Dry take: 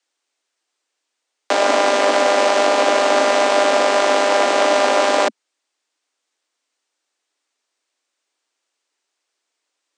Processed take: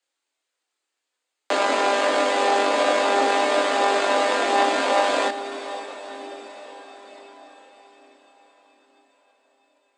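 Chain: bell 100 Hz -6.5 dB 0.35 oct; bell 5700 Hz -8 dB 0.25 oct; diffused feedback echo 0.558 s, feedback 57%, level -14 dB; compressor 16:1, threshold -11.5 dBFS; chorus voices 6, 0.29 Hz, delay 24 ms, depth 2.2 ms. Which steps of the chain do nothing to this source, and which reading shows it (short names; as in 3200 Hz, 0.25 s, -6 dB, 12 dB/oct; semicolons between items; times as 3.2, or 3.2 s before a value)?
bell 100 Hz: input band starts at 190 Hz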